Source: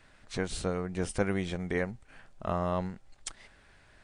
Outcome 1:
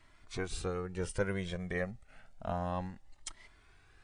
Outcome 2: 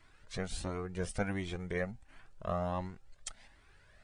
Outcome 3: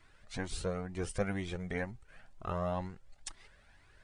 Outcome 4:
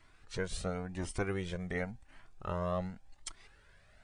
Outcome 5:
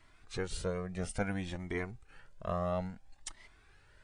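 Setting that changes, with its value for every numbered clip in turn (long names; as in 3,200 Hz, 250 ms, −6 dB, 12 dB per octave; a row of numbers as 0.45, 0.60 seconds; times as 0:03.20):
flanger whose copies keep moving one way, speed: 0.3, 1.4, 2.1, 0.92, 0.59 Hertz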